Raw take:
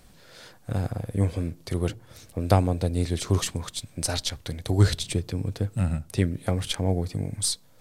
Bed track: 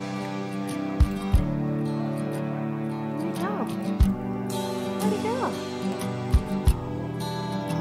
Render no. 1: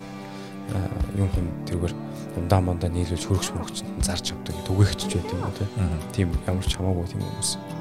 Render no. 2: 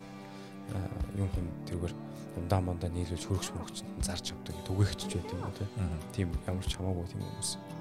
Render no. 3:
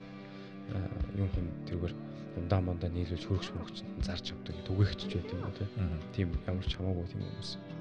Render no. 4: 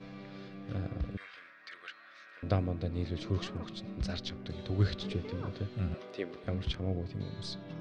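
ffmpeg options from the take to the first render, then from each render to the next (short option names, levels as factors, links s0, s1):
-filter_complex "[1:a]volume=0.501[s0];[0:a][s0]amix=inputs=2:normalize=0"
-af "volume=0.335"
-af "lowpass=f=4600:w=0.5412,lowpass=f=4600:w=1.3066,equalizer=f=860:t=o:w=0.25:g=-14.5"
-filter_complex "[0:a]asettb=1/sr,asplit=3[s0][s1][s2];[s0]atrim=end=1.174[s3];[s1]atrim=start=1.17:end=2.43,asetpts=PTS-STARTPTS,afade=t=in:d=0.004:c=qsin,afade=t=out:st=1.256:d=0.004:c=qsin,highpass=f=1600:t=q:w=3.5[s4];[s2]atrim=start=2.426[s5];[s3][s4]acrossfade=d=0.004:c1=hsin:c2=qsin[s6];[s6][s5]acrossfade=d=0.004:c1=qsin:c2=hsin,asettb=1/sr,asplit=3[s7][s8][s9];[s7]atrim=end=5.944[s10];[s8]atrim=start=5.94:end=6.44,asetpts=PTS-STARTPTS,afade=t=in:d=0.004:c=qsin,afade=t=out:st=0.496:d=0.004:c=qsin,highpass=f=440:t=q:w=1.6[s11];[s9]atrim=start=6.436[s12];[s10][s11]acrossfade=d=0.004:c1=hsin:c2=qsin[s13];[s13][s12]acrossfade=d=0.004:c1=qsin:c2=hsin"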